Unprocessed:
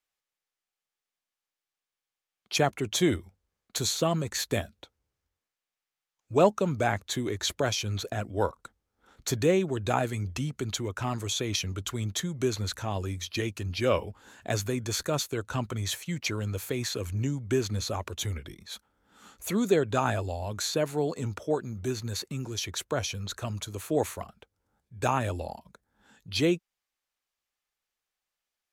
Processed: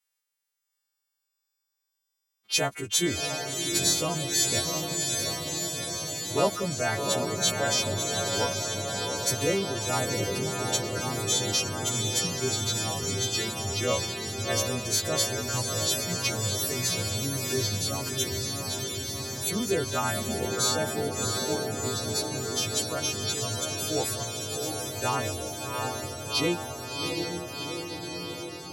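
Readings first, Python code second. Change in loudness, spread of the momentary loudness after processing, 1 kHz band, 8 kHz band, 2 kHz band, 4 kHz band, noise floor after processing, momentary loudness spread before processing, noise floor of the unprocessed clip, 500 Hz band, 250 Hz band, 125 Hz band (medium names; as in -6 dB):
+2.5 dB, 7 LU, +1.0 dB, +9.5 dB, +3.5 dB, +7.0 dB, -82 dBFS, 9 LU, under -85 dBFS, -0.5 dB, -1.5 dB, -1.0 dB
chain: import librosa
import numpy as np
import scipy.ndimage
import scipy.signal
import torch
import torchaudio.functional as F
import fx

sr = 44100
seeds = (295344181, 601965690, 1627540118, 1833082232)

y = fx.freq_snap(x, sr, grid_st=2)
y = fx.echo_diffused(y, sr, ms=721, feedback_pct=73, wet_db=-3.0)
y = y * librosa.db_to_amplitude(-3.0)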